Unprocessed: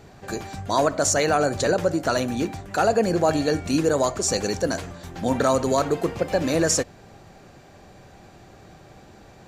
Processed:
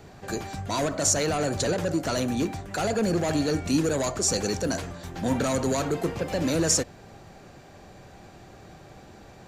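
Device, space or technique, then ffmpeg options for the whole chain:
one-band saturation: -filter_complex "[0:a]acrossover=split=300|3900[link_01][link_02][link_03];[link_02]asoftclip=type=tanh:threshold=-26dB[link_04];[link_01][link_04][link_03]amix=inputs=3:normalize=0"

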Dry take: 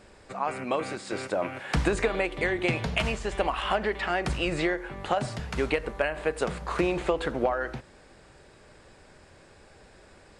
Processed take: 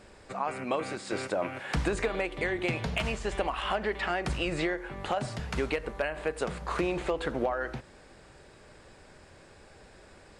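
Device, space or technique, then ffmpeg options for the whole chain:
clipper into limiter: -af "asoftclip=type=hard:threshold=-14.5dB,alimiter=limit=-18.5dB:level=0:latency=1:release=418"

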